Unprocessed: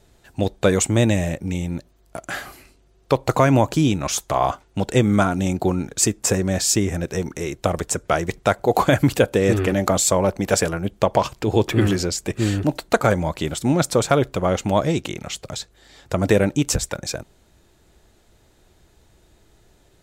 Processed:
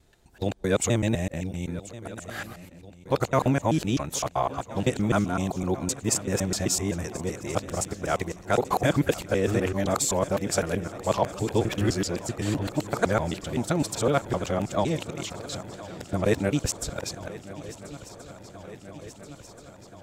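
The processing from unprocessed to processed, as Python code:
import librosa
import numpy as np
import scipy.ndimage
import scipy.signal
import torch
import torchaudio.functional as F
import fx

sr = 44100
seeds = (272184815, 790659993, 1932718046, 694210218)

y = fx.local_reverse(x, sr, ms=128.0)
y = fx.echo_swing(y, sr, ms=1379, ratio=3, feedback_pct=69, wet_db=-17.5)
y = y * 10.0 ** (-6.5 / 20.0)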